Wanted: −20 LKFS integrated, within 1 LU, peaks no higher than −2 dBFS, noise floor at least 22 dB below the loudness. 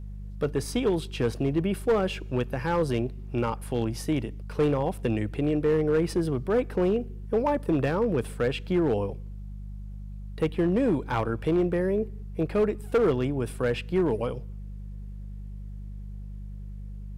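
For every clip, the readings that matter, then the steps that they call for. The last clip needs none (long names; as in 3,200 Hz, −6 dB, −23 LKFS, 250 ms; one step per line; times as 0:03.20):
share of clipped samples 1.2%; peaks flattened at −17.5 dBFS; mains hum 50 Hz; hum harmonics up to 200 Hz; level of the hum −36 dBFS; integrated loudness −27.0 LKFS; sample peak −17.5 dBFS; target loudness −20.0 LKFS
→ clipped peaks rebuilt −17.5 dBFS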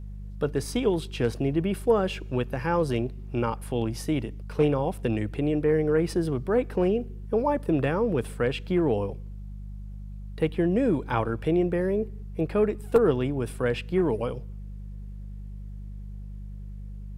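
share of clipped samples 0.0%; mains hum 50 Hz; hum harmonics up to 200 Hz; level of the hum −36 dBFS
→ hum removal 50 Hz, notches 4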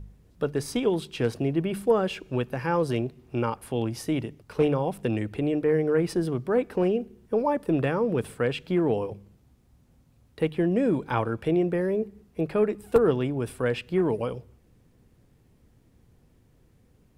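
mains hum none found; integrated loudness −27.0 LKFS; sample peak −8.0 dBFS; target loudness −20.0 LKFS
→ level +7 dB
brickwall limiter −2 dBFS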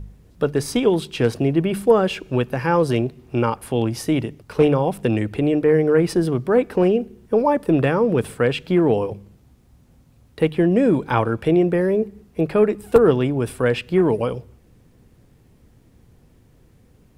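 integrated loudness −20.0 LKFS; sample peak −2.0 dBFS; background noise floor −54 dBFS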